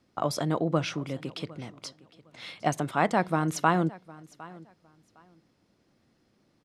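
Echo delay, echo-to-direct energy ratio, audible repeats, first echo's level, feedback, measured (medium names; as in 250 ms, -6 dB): 758 ms, -21.0 dB, 2, -21.0 dB, 21%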